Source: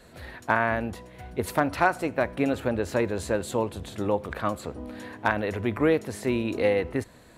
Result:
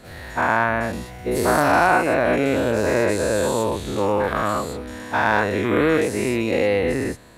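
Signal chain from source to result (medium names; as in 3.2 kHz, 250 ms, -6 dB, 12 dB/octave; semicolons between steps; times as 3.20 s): every event in the spectrogram widened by 240 ms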